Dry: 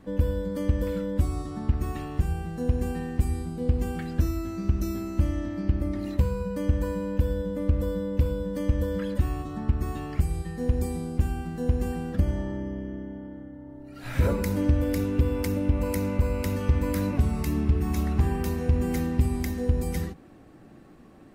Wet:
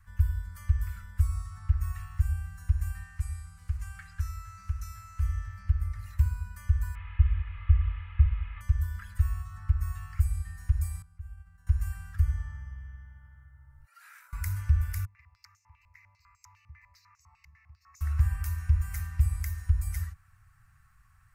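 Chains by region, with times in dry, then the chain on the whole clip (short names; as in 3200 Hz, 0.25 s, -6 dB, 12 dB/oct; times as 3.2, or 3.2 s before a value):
3.03–5.22 block floating point 7-bit + LPF 9600 Hz + low shelf 190 Hz -8 dB
6.95–8.61 delta modulation 16 kbps, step -34 dBFS + bell 1500 Hz -9.5 dB 0.25 oct + comb 2.4 ms, depth 67%
11.02–11.67 expander -26 dBFS + high shelf 3300 Hz -9.5 dB + compressor 3:1, threshold -41 dBFS
13.85–14.33 brick-wall FIR high-pass 360 Hz + compressor 4:1, threshold -45 dBFS
15.05–18.01 fixed phaser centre 2200 Hz, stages 8 + stepped band-pass 10 Hz 410–6600 Hz
whole clip: Chebyshev band-stop 100–1300 Hz, order 3; bell 3500 Hz -14 dB 1.1 oct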